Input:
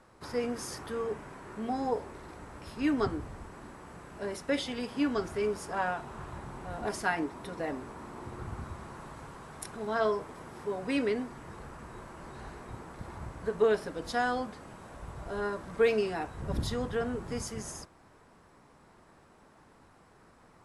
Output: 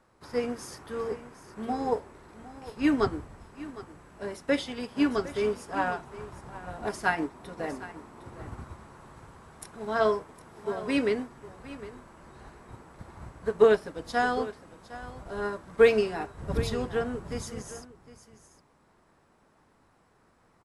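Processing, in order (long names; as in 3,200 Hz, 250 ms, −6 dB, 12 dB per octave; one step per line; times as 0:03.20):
single-tap delay 759 ms −11.5 dB
expander for the loud parts 1.5 to 1, over −45 dBFS
level +7 dB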